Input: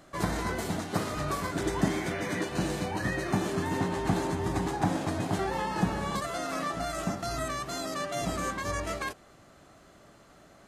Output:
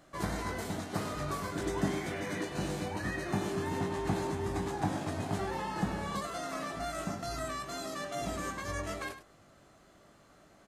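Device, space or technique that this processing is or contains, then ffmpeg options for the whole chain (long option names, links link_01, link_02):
slapback doubling: -filter_complex "[0:a]asplit=3[link_01][link_02][link_03];[link_02]adelay=20,volume=-7.5dB[link_04];[link_03]adelay=101,volume=-11.5dB[link_05];[link_01][link_04][link_05]amix=inputs=3:normalize=0,volume=-5.5dB"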